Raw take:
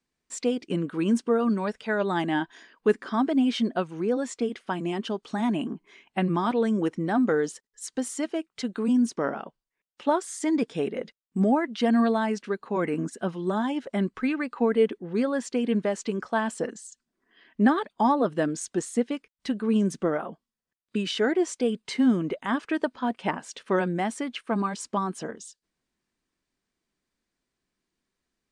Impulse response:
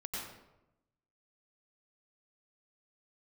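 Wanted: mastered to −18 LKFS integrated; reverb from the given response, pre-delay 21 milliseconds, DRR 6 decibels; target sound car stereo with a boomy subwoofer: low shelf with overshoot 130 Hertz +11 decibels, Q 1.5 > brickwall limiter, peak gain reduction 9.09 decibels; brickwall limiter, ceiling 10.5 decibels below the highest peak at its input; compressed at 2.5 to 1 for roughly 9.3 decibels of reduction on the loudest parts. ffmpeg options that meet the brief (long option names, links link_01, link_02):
-filter_complex "[0:a]acompressor=threshold=-30dB:ratio=2.5,alimiter=level_in=4dB:limit=-24dB:level=0:latency=1,volume=-4dB,asplit=2[link_01][link_02];[1:a]atrim=start_sample=2205,adelay=21[link_03];[link_02][link_03]afir=irnorm=-1:irlink=0,volume=-7dB[link_04];[link_01][link_04]amix=inputs=2:normalize=0,lowshelf=frequency=130:width_type=q:width=1.5:gain=11,volume=23.5dB,alimiter=limit=-9.5dB:level=0:latency=1"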